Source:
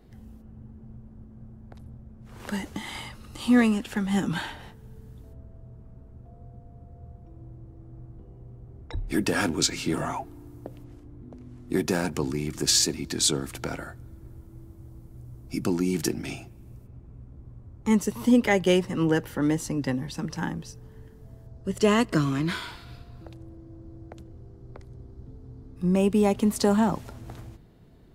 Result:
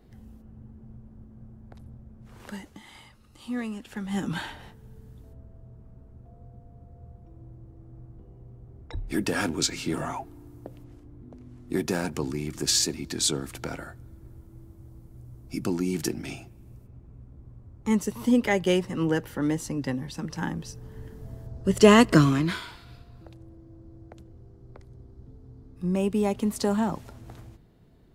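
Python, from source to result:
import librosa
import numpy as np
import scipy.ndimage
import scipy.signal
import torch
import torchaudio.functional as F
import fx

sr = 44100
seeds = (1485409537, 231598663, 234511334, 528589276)

y = fx.gain(x, sr, db=fx.line((2.24, -1.5), (2.79, -12.5), (3.62, -12.5), (4.32, -2.0), (20.27, -2.0), (21.12, 6.0), (22.22, 6.0), (22.66, -3.5)))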